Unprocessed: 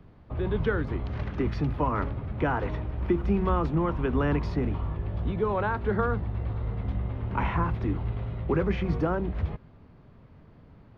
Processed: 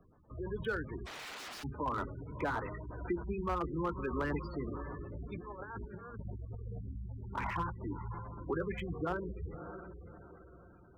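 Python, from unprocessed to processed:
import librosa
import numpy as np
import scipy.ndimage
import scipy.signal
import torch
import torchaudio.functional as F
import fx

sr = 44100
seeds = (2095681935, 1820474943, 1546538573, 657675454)

y = fx.high_shelf(x, sr, hz=3900.0, db=9.0)
y = fx.hum_notches(y, sr, base_hz=50, count=5)
y = fx.over_compress(y, sr, threshold_db=-32.0, ratio=-0.5, at=(5.26, 6.78), fade=0.02)
y = fx.filter_lfo_notch(y, sr, shape='square', hz=8.6, low_hz=730.0, high_hz=2800.0, q=1.1)
y = fx.echo_diffused(y, sr, ms=608, feedback_pct=40, wet_db=-10.0)
y = fx.overflow_wrap(y, sr, gain_db=35.5, at=(1.05, 1.63), fade=0.02)
y = fx.low_shelf(y, sr, hz=380.0, db=-11.0)
y = fx.spec_gate(y, sr, threshold_db=-15, keep='strong')
y = fx.slew_limit(y, sr, full_power_hz=41.0)
y = F.gain(torch.from_numpy(y), -2.5).numpy()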